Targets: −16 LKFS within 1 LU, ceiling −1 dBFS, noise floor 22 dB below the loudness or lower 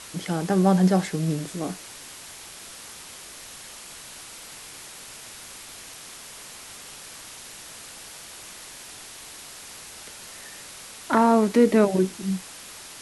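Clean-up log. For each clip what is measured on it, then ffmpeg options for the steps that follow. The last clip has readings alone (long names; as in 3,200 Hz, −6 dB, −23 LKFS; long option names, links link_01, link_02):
background noise floor −43 dBFS; target noise floor −45 dBFS; integrated loudness −22.5 LKFS; sample peak −6.0 dBFS; target loudness −16.0 LKFS
→ -af "afftdn=noise_reduction=6:noise_floor=-43"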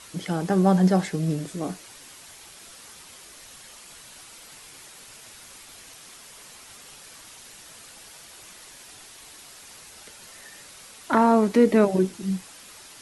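background noise floor −47 dBFS; integrated loudness −22.0 LKFS; sample peak −6.0 dBFS; target loudness −16.0 LKFS
→ -af "volume=6dB,alimiter=limit=-1dB:level=0:latency=1"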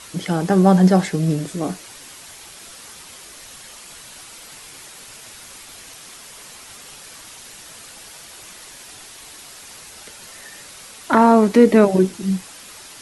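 integrated loudness −16.5 LKFS; sample peak −1.0 dBFS; background noise floor −41 dBFS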